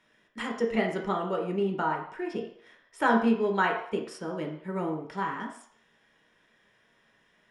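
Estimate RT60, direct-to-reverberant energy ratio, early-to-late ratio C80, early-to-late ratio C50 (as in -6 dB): 0.60 s, 0.0 dB, 9.5 dB, 6.0 dB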